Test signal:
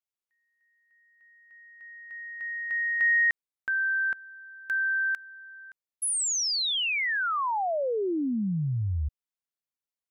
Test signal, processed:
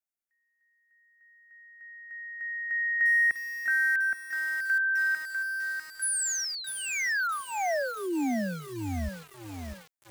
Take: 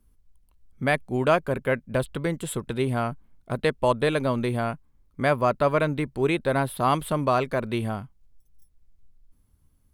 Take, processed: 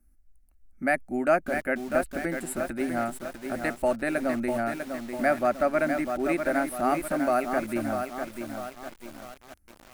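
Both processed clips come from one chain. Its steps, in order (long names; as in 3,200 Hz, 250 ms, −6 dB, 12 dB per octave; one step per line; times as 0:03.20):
phaser with its sweep stopped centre 680 Hz, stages 8
feedback echo at a low word length 648 ms, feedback 55%, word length 7 bits, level −6 dB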